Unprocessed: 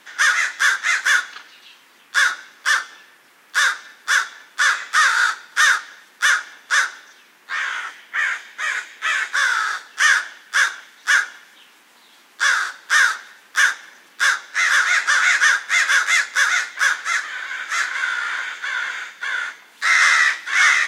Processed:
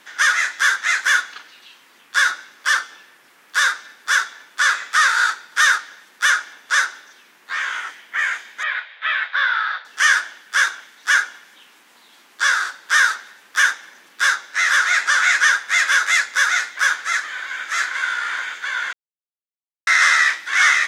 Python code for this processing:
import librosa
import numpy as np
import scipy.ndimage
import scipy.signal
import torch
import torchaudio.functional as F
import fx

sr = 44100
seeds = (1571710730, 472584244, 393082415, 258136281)

y = fx.ellip_bandpass(x, sr, low_hz=550.0, high_hz=3800.0, order=3, stop_db=40, at=(8.63, 9.85))
y = fx.edit(y, sr, fx.silence(start_s=18.93, length_s=0.94), tone=tone)